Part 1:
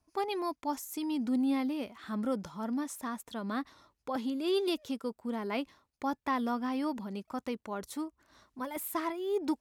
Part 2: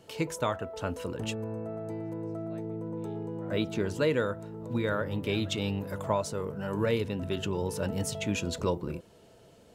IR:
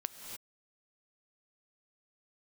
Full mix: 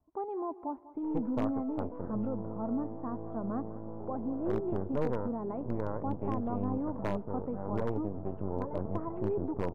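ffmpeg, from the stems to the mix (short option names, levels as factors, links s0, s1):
-filter_complex "[0:a]alimiter=level_in=1.5:limit=0.0631:level=0:latency=1:release=300,volume=0.668,volume=0.944,asplit=3[s0][s1][s2];[s1]volume=0.168[s3];[s2]volume=0.168[s4];[1:a]aeval=exprs='max(val(0),0)':c=same,adelay=950,volume=0.891[s5];[2:a]atrim=start_sample=2205[s6];[s3][s6]afir=irnorm=-1:irlink=0[s7];[s4]aecho=0:1:196|392|588|784|980:1|0.32|0.102|0.0328|0.0105[s8];[s0][s5][s7][s8]amix=inputs=4:normalize=0,lowpass=f=1000:w=0.5412,lowpass=f=1000:w=1.3066,aeval=exprs='0.0944*(abs(mod(val(0)/0.0944+3,4)-2)-1)':c=same"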